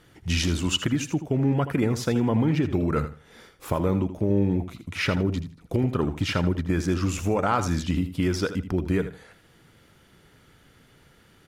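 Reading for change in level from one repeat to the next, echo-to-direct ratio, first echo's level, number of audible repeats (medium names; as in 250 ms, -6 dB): -14.0 dB, -11.5 dB, -11.5 dB, 2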